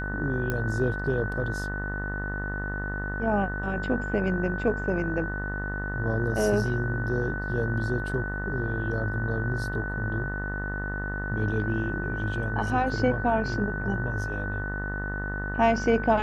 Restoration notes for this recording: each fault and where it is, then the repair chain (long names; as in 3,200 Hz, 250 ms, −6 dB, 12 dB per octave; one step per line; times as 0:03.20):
mains buzz 50 Hz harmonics 38 −33 dBFS
whistle 1,500 Hz −33 dBFS
0:00.50: click −15 dBFS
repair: click removal
notch filter 1,500 Hz, Q 30
hum removal 50 Hz, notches 38